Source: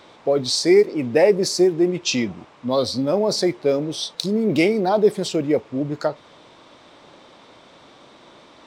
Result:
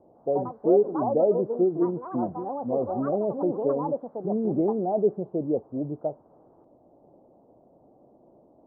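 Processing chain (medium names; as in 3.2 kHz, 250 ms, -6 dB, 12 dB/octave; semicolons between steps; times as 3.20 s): Chebyshev low-pass 750 Hz, order 4; ever faster or slower copies 150 ms, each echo +5 st, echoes 2, each echo -6 dB; trim -6 dB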